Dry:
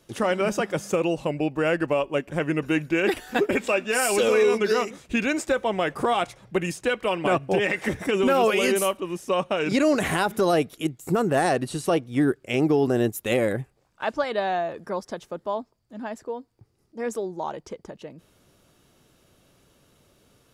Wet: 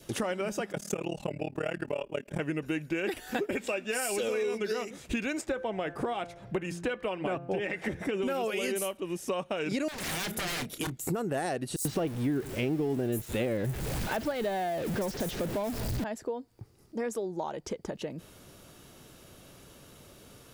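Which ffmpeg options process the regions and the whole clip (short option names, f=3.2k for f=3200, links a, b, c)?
-filter_complex "[0:a]asettb=1/sr,asplit=3[a][b][c];[a]atrim=end=0.724[d];[b]atrim=start=0.72:end=2.4,asetpts=PTS-STARTPTS,afade=t=in:d=0.004:c=qsin,afade=t=out:st=1.676:d=0.004:c=qsin,aecho=1:1:4.9:0.47,atrim=end_sample=74088,tremolo=f=37:d=0.974[e];[c]atrim=start=2.396[f];[d][e]acrossfade=d=0.004:c1=hsin:c2=qsin[g];[g][f]acrossfade=d=0.004:c1=qsin:c2=hsin,asettb=1/sr,asplit=3[h][i][j];[h]atrim=end=5.414[k];[i]atrim=start=5.41:end=8.22,asetpts=PTS-STARTPTS,afade=t=in:d=0.004:c=qsin,afade=t=out:st=2.806:d=0.004:c=qsin,highshelf=f=4.8k:g=-12,bandreject=f=172.1:t=h:w=4,bandreject=f=344.2:t=h:w=4,bandreject=f=516.3:t=h:w=4,bandreject=f=688.4:t=h:w=4,bandreject=f=860.5:t=h:w=4,bandreject=f=1.0326k:t=h:w=4,bandreject=f=1.2047k:t=h:w=4,bandreject=f=1.3768k:t=h:w=4,bandreject=f=1.5489k:t=h:w=4,bandreject=f=1.721k:t=h:w=4[l];[j]atrim=start=8.216[m];[k][l]acrossfade=d=0.004:c1=hsin:c2=qsin[n];[n][m]acrossfade=d=0.004:c1=qsin:c2=hsin,asettb=1/sr,asplit=3[o][p][q];[o]atrim=end=9.884[r];[p]atrim=start=9.88:end=10.97,asetpts=PTS-STARTPTS,afade=t=in:d=0.004:c=qsin,afade=t=out:st=1.086:d=0.004:c=qsin,aeval=exprs='0.0447*(abs(mod(val(0)/0.0447+3,4)-2)-1)':c=same,asplit=2[s][t];[t]adelay=30,volume=-12dB[u];[s][u]amix=inputs=2:normalize=0,atrim=end_sample=48069[v];[q]atrim=start=10.966[w];[r][v]acrossfade=d=0.004:c1=hsin:c2=qsin[x];[x][w]acrossfade=d=0.004:c1=qsin:c2=hsin,asettb=1/sr,asplit=3[y][z][aa];[y]atrim=end=11.764[ab];[z]atrim=start=11.76:end=16.04,asetpts=PTS-STARTPTS,afade=t=in:d=0.004:c=qsin,afade=t=out:st=4.276:d=0.004:c=qsin,aeval=exprs='val(0)+0.5*0.0398*sgn(val(0))':c=same,lowshelf=f=350:g=7,acrossover=split=5700[ac][ad];[ac]adelay=90[ae];[ae][ad]amix=inputs=2:normalize=0,atrim=end_sample=188748[af];[aa]atrim=start=16.036[ag];[ab][af]acrossfade=d=0.004:c1=hsin:c2=qsin[ah];[ah][ag]acrossfade=d=0.004:c1=qsin:c2=hsin,highshelf=f=11k:g=5,acompressor=threshold=-39dB:ratio=4,adynamicequalizer=threshold=0.001:dfrequency=1100:dqfactor=2.7:tfrequency=1100:tqfactor=2.7:attack=5:release=100:ratio=0.375:range=3:mode=cutabove:tftype=bell,volume=7dB"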